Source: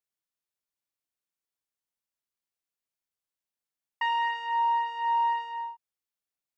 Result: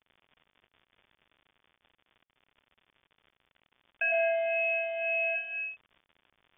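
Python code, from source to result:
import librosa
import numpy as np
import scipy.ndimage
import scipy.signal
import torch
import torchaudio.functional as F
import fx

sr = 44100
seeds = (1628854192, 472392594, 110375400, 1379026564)

y = fx.dmg_crackle(x, sr, seeds[0], per_s=130.0, level_db=-44.0)
y = fx.freq_invert(y, sr, carrier_hz=3500)
y = fx.room_flutter(y, sr, wall_m=3.1, rt60_s=0.83, at=(4.11, 5.34), fade=0.02)
y = F.gain(torch.from_numpy(y), -1.0).numpy()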